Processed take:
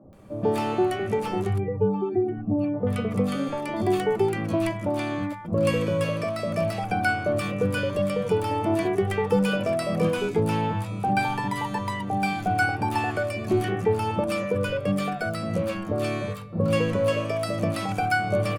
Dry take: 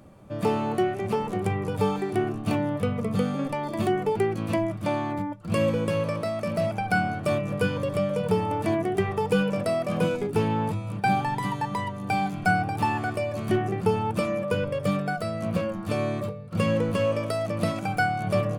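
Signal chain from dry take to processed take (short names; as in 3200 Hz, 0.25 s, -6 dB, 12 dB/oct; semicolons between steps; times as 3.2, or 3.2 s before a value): 1.45–2.74 spectral contrast raised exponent 1.9; three bands offset in time mids, lows, highs 30/130 ms, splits 160/880 Hz; gain +2.5 dB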